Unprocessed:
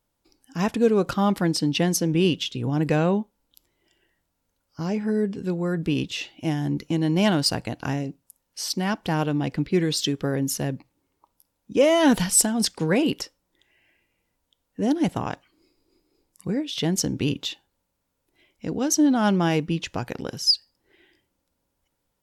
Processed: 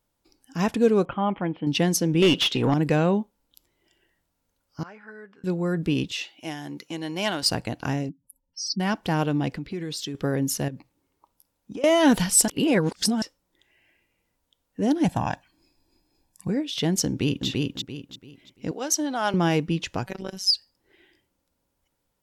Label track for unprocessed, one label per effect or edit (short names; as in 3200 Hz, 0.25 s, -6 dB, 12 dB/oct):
1.050000	1.670000	rippled Chebyshev low-pass 3300 Hz, ripple 6 dB
2.220000	2.740000	overdrive pedal drive 22 dB, tone 2500 Hz, clips at -9 dBFS
4.830000	5.440000	band-pass 1400 Hz, Q 3.1
6.120000	7.430000	HPF 810 Hz 6 dB/oct
8.090000	8.800000	spectral contrast raised exponent 3.2
9.570000	10.150000	compressor 3:1, threshold -31 dBFS
10.680000	11.840000	compressor 12:1, threshold -31 dBFS
12.480000	13.220000	reverse
15.050000	16.490000	comb 1.2 ms
17.070000	17.470000	echo throw 0.34 s, feedback 30%, level -2 dB
18.710000	19.340000	HPF 510 Hz
20.060000	20.520000	robotiser 190 Hz